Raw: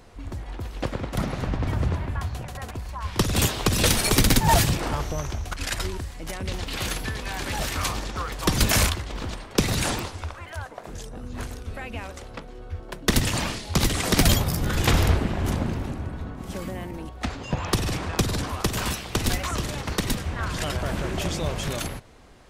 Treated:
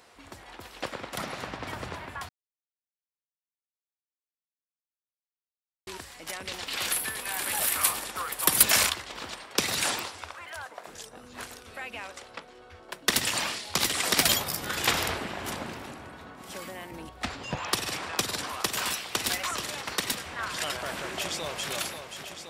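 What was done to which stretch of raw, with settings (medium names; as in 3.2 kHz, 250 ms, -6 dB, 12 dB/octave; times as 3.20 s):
2.29–5.87 s: mute
6.92–8.63 s: resonant high shelf 8 kHz +10.5 dB, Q 1.5
11.97–12.89 s: Bessel low-pass 10 kHz
16.91–17.57 s: bass shelf 200 Hz +12 dB
21.12–21.70 s: echo throw 530 ms, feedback 80%, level -7.5 dB
whole clip: high-pass 1 kHz 6 dB/octave; band-stop 6.4 kHz, Q 21; trim +1 dB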